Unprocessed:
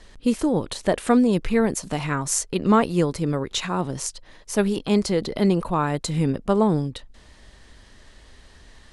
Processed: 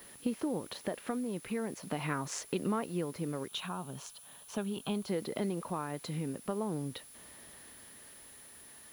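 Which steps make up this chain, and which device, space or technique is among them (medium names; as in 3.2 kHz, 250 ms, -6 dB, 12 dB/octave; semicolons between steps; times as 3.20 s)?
medium wave at night (band-pass 150–3600 Hz; compression, threshold -27 dBFS, peak gain reduction 13.5 dB; tremolo 0.41 Hz, depth 36%; whistle 10 kHz -50 dBFS; white noise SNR 22 dB); 3.48–5.08 s: graphic EQ with 31 bands 315 Hz -12 dB, 500 Hz -9 dB, 2 kHz -12 dB, 3.15 kHz +4 dB, 5 kHz -6 dB; trim -3 dB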